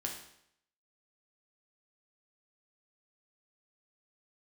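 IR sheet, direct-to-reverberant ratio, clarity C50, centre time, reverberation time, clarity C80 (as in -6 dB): 0.0 dB, 5.5 dB, 30 ms, 0.70 s, 8.5 dB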